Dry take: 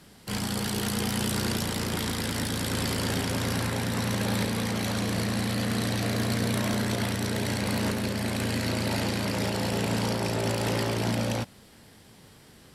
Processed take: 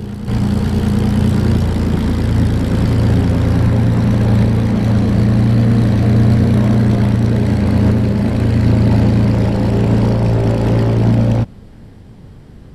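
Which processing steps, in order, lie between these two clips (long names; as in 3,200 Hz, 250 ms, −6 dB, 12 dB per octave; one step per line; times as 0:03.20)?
spectral tilt −4 dB per octave
backwards echo 740 ms −10.5 dB
level +6 dB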